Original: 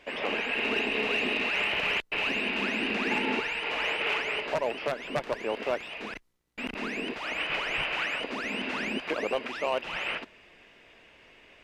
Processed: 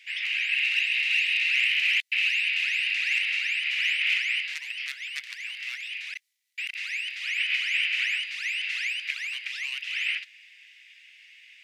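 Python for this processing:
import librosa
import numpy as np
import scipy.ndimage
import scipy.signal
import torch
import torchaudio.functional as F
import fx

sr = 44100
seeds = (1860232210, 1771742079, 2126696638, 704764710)

y = scipy.signal.sosfilt(scipy.signal.ellip(4, 1.0, 80, 2000.0, 'highpass', fs=sr, output='sos'), x)
y = F.gain(torch.from_numpy(y), 6.5).numpy()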